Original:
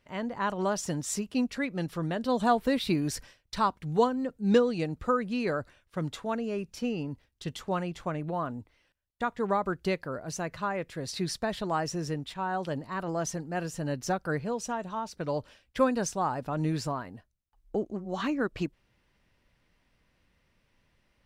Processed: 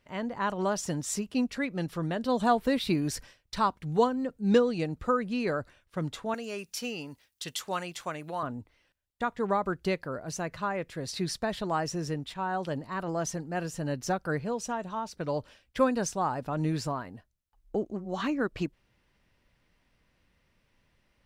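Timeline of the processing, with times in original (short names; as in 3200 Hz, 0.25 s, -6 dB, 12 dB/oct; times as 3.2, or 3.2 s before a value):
6.34–8.43 tilt +3.5 dB/oct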